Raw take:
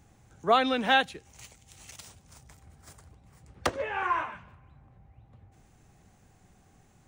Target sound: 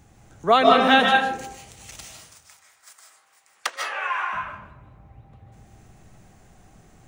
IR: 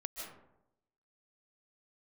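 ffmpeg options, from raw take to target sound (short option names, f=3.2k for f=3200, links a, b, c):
-filter_complex "[0:a]asettb=1/sr,asplit=3[a][b][c];[a]atrim=end=2.034[d];[b]atrim=start=2.03:end=4.33,asetpts=PTS-STARTPTS,afade=t=in:d=0.004:c=qsin,afade=t=out:st=2.296:d=0.004:c=qsin,highpass=1.3k[e];[c]atrim=start=4.326[f];[d][e]acrossfade=d=0.004:c1=hsin:c2=qsin[g];[g][f]acrossfade=d=0.004:c1=qsin:c2=hsin[h];[1:a]atrim=start_sample=2205[i];[h][i]afir=irnorm=-1:irlink=0,volume=9dB"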